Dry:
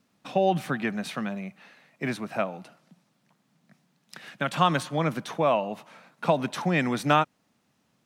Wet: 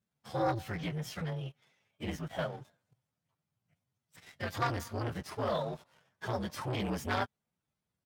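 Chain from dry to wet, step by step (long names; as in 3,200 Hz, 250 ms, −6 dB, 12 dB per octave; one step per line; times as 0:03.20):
partials spread apart or drawn together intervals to 123%
leveller curve on the samples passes 2
pitch shifter −4.5 semitones
saturating transformer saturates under 680 Hz
level −9 dB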